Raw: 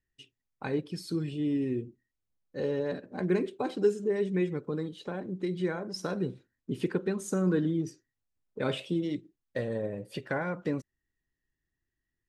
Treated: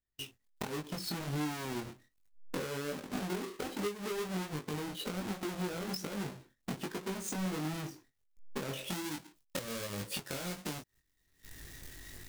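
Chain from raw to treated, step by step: square wave that keeps the level; recorder AGC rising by 35 dB/s; treble shelf 2.6 kHz +2 dB, from 8.88 s +10.5 dB; gate -52 dBFS, range -14 dB; compression 6:1, threshold -36 dBFS, peak gain reduction 19.5 dB; chorus 1.3 Hz, delay 19.5 ms, depth 3.1 ms; trim +2 dB

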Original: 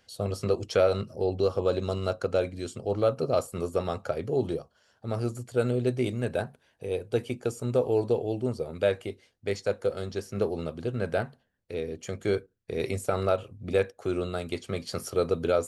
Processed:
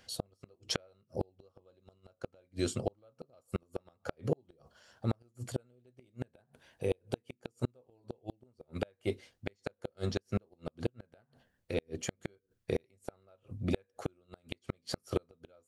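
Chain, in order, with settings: band-stop 430 Hz, Q 13; inverted gate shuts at -21 dBFS, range -41 dB; trim +3.5 dB

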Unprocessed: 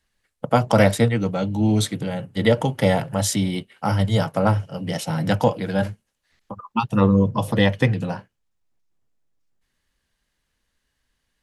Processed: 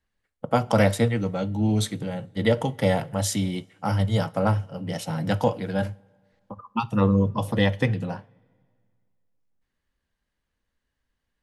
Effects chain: two-slope reverb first 0.32 s, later 2 s, from -17 dB, DRR 17 dB; tape noise reduction on one side only decoder only; trim -4 dB

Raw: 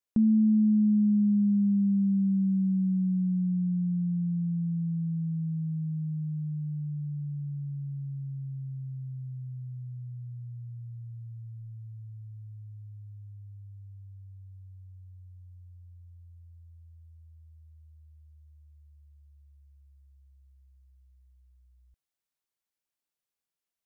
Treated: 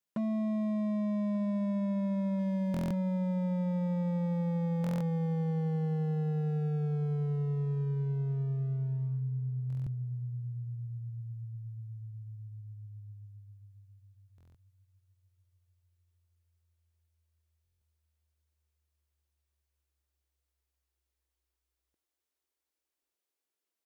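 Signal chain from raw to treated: compression 6:1, threshold -30 dBFS, peak gain reduction 9.5 dB; 2.39–2.94 s: waveshaping leveller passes 2; high-pass sweep 150 Hz -> 340 Hz, 13.10–15.10 s; hard clipper -30 dBFS, distortion -9 dB; feedback delay 1186 ms, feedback 23%, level -21 dB; buffer glitch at 2.72/4.82/9.68/14.36/17.63 s, samples 1024, times 7

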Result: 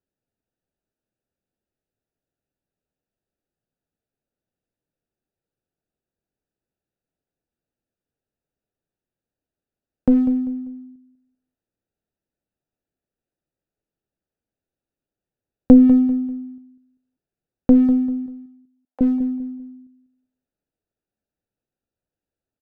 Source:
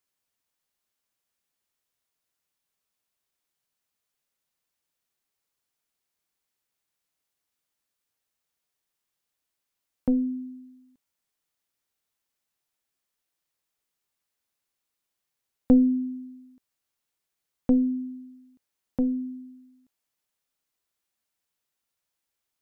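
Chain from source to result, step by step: local Wiener filter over 41 samples; 18.26–19.01 s: ladder high-pass 620 Hz, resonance 45%; feedback delay 196 ms, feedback 30%, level -12.5 dB; trim +8.5 dB

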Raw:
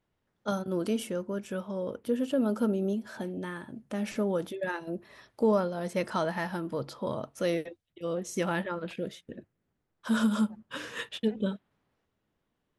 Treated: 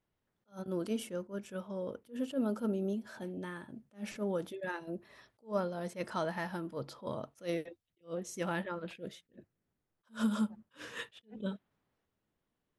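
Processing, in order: attacks held to a fixed rise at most 270 dB/s; trim -5 dB

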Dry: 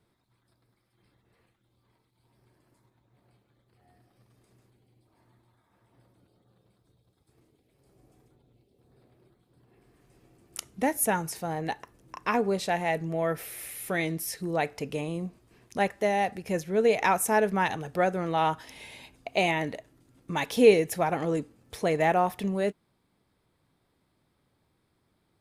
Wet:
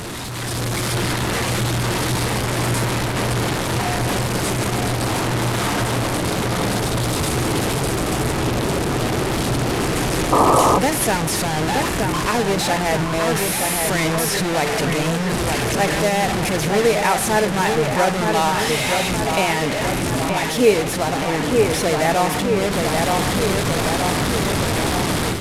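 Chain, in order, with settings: one-bit delta coder 64 kbps, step -22 dBFS; on a send: feedback echo behind a low-pass 923 ms, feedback 63%, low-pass 2.7 kHz, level -4.5 dB; on the sum: level rider gain up to 8 dB; painted sound noise, 10.32–10.79 s, 250–1300 Hz -13 dBFS; trim -1.5 dB

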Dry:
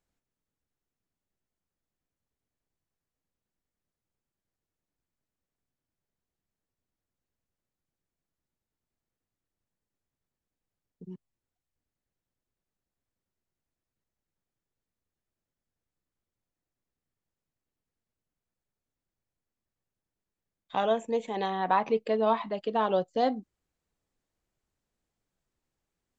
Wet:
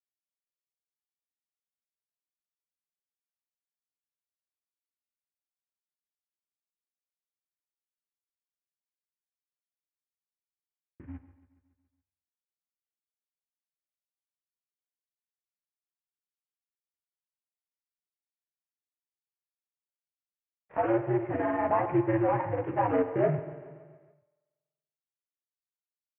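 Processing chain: CVSD coder 16 kbps; chorus voices 2, 1 Hz, delay 16 ms, depth 3 ms; granulator, grains 20 per s, spray 29 ms, pitch spread up and down by 0 st; in parallel at +1.5 dB: peak limiter -25 dBFS, peak gain reduction 7 dB; on the sum: spring tank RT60 1.7 s, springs 47 ms, chirp 30 ms, DRR 12 dB; mistuned SSB -100 Hz 190–2200 Hz; expander -57 dBFS; on a send: feedback delay 140 ms, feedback 59%, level -17 dB

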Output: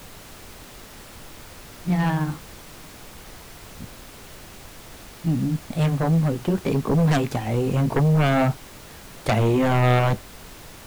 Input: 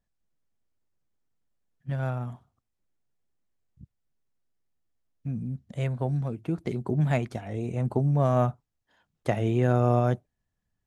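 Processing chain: pitch bend over the whole clip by +5 st ending unshifted; in parallel at -9.5 dB: sine folder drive 15 dB, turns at -9.5 dBFS; on the sum: added noise pink -42 dBFS

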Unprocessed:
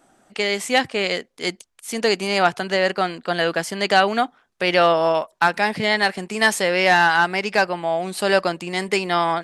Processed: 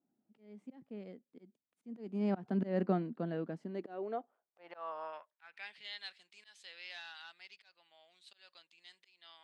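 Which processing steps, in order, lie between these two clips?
Doppler pass-by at 2.71 s, 12 m/s, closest 2.5 m; slow attack 248 ms; band-pass sweep 220 Hz -> 3.6 kHz, 3.56–5.88 s; trim +5.5 dB

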